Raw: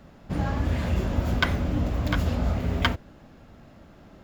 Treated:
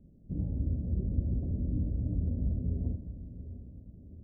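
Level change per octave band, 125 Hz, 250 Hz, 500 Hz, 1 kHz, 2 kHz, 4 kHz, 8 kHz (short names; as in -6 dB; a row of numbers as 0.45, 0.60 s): -5.0 dB, -7.5 dB, -15.5 dB, under -35 dB, under -40 dB, under -40 dB, n/a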